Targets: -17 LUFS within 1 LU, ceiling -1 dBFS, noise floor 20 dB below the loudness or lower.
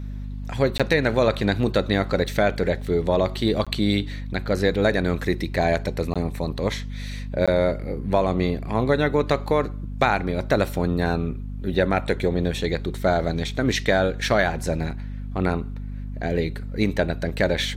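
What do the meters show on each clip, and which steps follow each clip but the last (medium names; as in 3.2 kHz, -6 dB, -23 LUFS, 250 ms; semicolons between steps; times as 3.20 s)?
dropouts 4; longest dropout 16 ms; hum 50 Hz; highest harmonic 250 Hz; hum level -29 dBFS; loudness -23.5 LUFS; peak level -5.0 dBFS; loudness target -17.0 LUFS
-> interpolate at 0.78/3.65/6.14/7.46 s, 16 ms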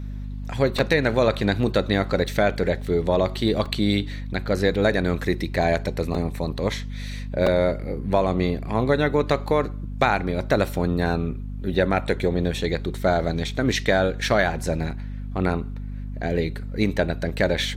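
dropouts 0; hum 50 Hz; highest harmonic 250 Hz; hum level -29 dBFS
-> de-hum 50 Hz, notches 5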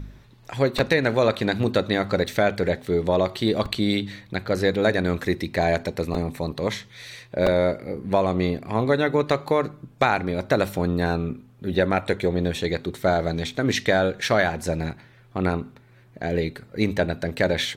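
hum not found; loudness -24.0 LUFS; peak level -5.0 dBFS; loudness target -17.0 LUFS
-> trim +7 dB; peak limiter -1 dBFS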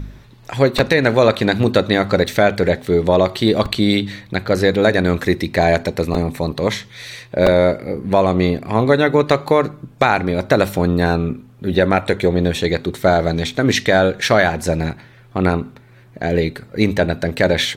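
loudness -17.0 LUFS; peak level -1.0 dBFS; noise floor -45 dBFS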